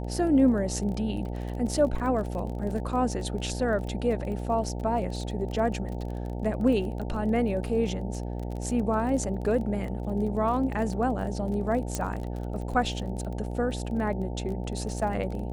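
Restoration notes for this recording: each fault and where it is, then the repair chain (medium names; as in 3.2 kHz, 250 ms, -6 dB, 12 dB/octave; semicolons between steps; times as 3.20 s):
buzz 60 Hz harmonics 15 -33 dBFS
crackle 24 per s -34 dBFS
11.95 s: pop -14 dBFS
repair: de-click; de-hum 60 Hz, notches 15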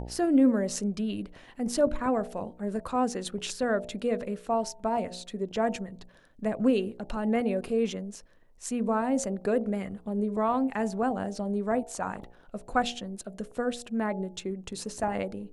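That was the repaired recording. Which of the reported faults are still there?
nothing left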